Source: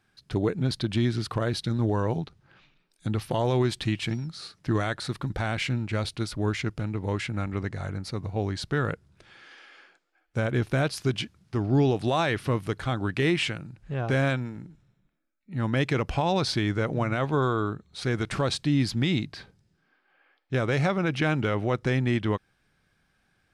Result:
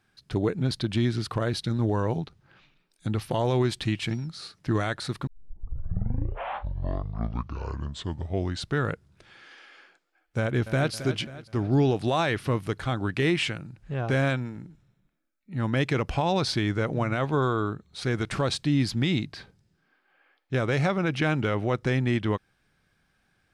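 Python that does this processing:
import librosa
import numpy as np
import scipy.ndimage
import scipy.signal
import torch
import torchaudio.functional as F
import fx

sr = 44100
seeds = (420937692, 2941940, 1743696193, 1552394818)

y = fx.echo_throw(x, sr, start_s=10.39, length_s=0.54, ms=270, feedback_pct=50, wet_db=-12.0)
y = fx.edit(y, sr, fx.tape_start(start_s=5.27, length_s=3.5), tone=tone)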